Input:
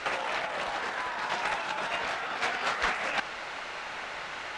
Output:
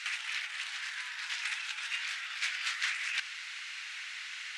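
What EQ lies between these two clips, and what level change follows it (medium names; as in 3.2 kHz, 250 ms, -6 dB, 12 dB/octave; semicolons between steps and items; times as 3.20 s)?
ladder high-pass 1.5 kHz, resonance 30%; treble shelf 2 kHz +11 dB; treble shelf 6.3 kHz +5 dB; -3.5 dB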